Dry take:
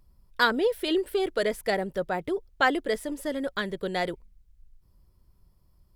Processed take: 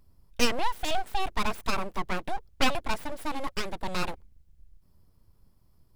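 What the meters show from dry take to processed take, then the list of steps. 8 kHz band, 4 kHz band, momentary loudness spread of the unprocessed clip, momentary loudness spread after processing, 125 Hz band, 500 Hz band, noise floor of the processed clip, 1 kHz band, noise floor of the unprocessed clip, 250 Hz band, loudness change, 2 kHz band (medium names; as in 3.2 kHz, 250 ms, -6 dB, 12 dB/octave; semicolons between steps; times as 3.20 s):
+6.0 dB, +0.5 dB, 8 LU, 8 LU, +1.5 dB, -8.5 dB, -62 dBFS, -0.5 dB, -63 dBFS, -5.0 dB, -3.5 dB, -5.0 dB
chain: full-wave rectifier; trim +1 dB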